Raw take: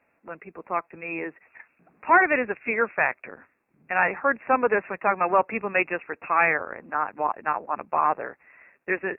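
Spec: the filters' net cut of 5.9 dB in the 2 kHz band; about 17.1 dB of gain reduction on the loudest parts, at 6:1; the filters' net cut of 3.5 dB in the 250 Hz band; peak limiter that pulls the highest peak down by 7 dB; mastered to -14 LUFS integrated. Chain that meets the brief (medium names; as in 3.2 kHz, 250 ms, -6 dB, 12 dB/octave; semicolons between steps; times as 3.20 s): peaking EQ 250 Hz -5 dB; peaking EQ 2 kHz -7.5 dB; compression 6:1, threshold -34 dBFS; trim +27 dB; peak limiter -0.5 dBFS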